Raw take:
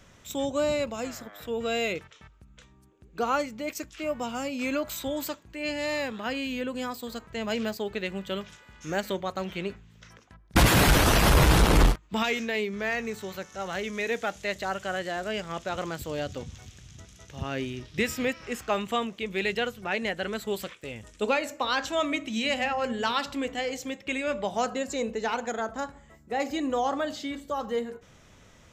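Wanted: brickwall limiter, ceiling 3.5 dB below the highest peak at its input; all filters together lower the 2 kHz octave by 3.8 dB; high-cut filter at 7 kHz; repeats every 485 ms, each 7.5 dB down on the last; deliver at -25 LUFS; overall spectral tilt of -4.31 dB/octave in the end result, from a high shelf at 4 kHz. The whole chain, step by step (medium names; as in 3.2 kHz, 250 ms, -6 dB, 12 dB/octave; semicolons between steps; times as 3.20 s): low-pass 7 kHz; peaking EQ 2 kHz -4 dB; treble shelf 4 kHz -3.5 dB; peak limiter -16 dBFS; feedback delay 485 ms, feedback 42%, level -7.5 dB; trim +5 dB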